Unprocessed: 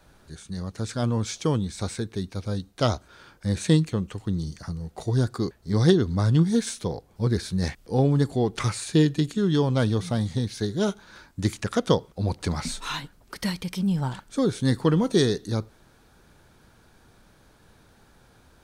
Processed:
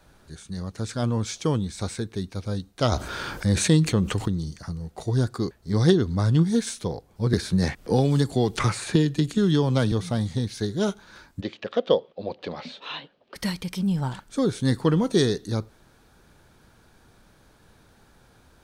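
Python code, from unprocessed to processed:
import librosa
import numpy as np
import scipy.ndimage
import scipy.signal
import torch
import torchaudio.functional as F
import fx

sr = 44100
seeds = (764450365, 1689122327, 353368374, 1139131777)

y = fx.env_flatten(x, sr, amount_pct=50, at=(2.92, 4.28))
y = fx.band_squash(y, sr, depth_pct=100, at=(7.33, 9.92))
y = fx.cabinet(y, sr, low_hz=300.0, low_slope=12, high_hz=3700.0, hz=(310.0, 540.0, 960.0, 1400.0, 2100.0, 3000.0), db=(-3, 7, -5, -8, -5, 3), at=(11.4, 13.34), fade=0.02)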